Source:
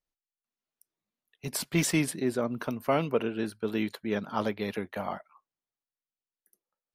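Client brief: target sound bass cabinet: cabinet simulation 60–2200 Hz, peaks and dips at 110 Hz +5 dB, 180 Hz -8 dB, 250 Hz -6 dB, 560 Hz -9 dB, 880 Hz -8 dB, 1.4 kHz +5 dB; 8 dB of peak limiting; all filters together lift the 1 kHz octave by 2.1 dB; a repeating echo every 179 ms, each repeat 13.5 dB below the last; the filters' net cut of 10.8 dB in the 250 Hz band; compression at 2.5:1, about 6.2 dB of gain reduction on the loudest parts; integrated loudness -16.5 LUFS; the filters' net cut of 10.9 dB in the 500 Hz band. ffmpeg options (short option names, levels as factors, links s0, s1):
-af "equalizer=f=250:t=o:g=-7,equalizer=f=500:t=o:g=-9,equalizer=f=1000:t=o:g=7.5,acompressor=threshold=0.0282:ratio=2.5,alimiter=level_in=1.26:limit=0.0631:level=0:latency=1,volume=0.794,highpass=f=60:w=0.5412,highpass=f=60:w=1.3066,equalizer=f=110:t=q:w=4:g=5,equalizer=f=180:t=q:w=4:g=-8,equalizer=f=250:t=q:w=4:g=-6,equalizer=f=560:t=q:w=4:g=-9,equalizer=f=880:t=q:w=4:g=-8,equalizer=f=1400:t=q:w=4:g=5,lowpass=f=2200:w=0.5412,lowpass=f=2200:w=1.3066,aecho=1:1:179|358:0.211|0.0444,volume=16.8"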